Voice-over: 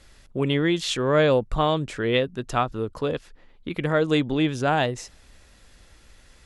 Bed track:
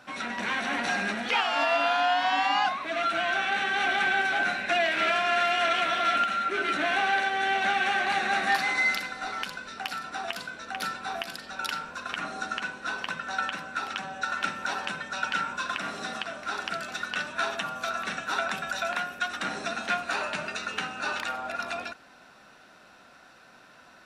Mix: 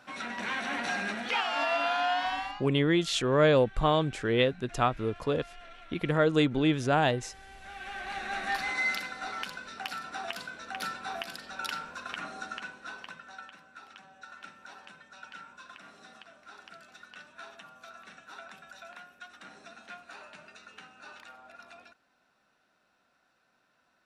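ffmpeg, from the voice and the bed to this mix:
-filter_complex "[0:a]adelay=2250,volume=0.708[s0];[1:a]volume=8.41,afade=t=out:st=2.19:d=0.43:silence=0.0794328,afade=t=in:st=7.6:d=1.41:silence=0.0749894,afade=t=out:st=11.85:d=1.62:silence=0.188365[s1];[s0][s1]amix=inputs=2:normalize=0"

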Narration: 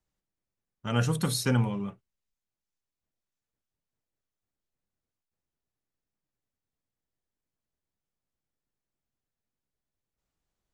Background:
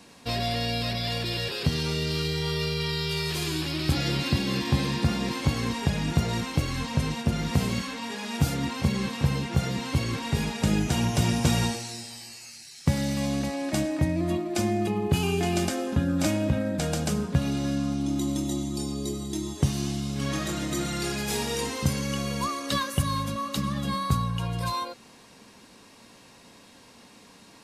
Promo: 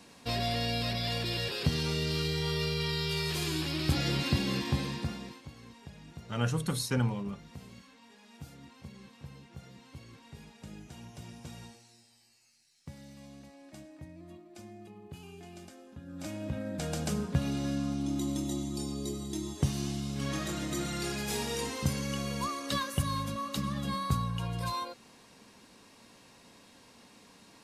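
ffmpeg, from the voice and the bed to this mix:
-filter_complex "[0:a]adelay=5450,volume=0.631[s0];[1:a]volume=5.31,afade=t=out:st=4.44:d=0.99:silence=0.105925,afade=t=in:st=16.02:d=1.13:silence=0.125893[s1];[s0][s1]amix=inputs=2:normalize=0"

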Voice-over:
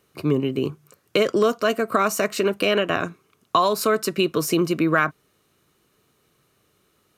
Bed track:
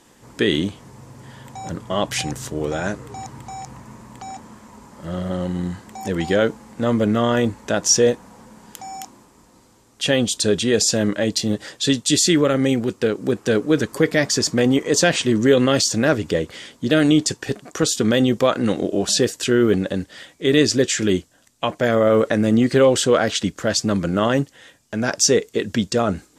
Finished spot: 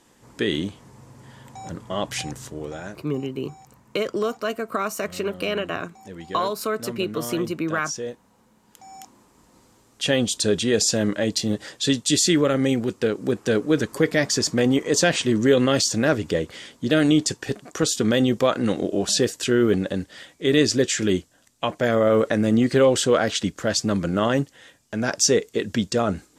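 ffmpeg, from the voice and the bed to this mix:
-filter_complex "[0:a]adelay=2800,volume=0.531[s0];[1:a]volume=2.51,afade=t=out:st=2.18:d=0.93:silence=0.298538,afade=t=in:st=8.64:d=1.02:silence=0.223872[s1];[s0][s1]amix=inputs=2:normalize=0"

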